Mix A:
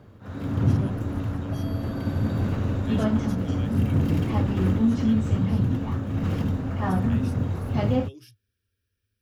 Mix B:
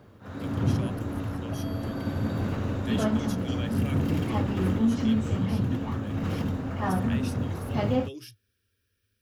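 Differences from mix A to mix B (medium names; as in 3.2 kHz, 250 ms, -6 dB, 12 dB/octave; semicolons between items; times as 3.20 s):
speech +6.5 dB; master: add bass shelf 180 Hz -6.5 dB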